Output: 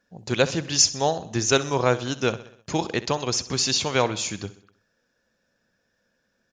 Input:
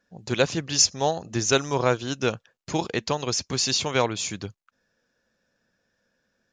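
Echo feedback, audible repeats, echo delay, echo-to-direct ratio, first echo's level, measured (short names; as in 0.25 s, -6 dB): 54%, 4, 64 ms, -15.0 dB, -16.5 dB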